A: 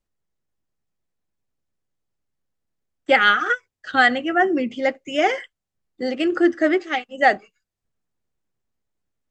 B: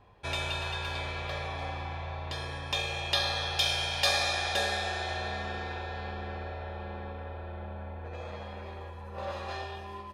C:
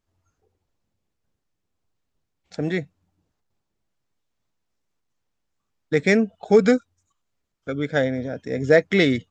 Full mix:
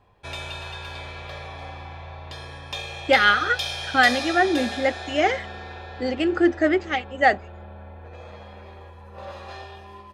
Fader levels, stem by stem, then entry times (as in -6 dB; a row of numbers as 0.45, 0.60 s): -1.5 dB, -1.0 dB, off; 0.00 s, 0.00 s, off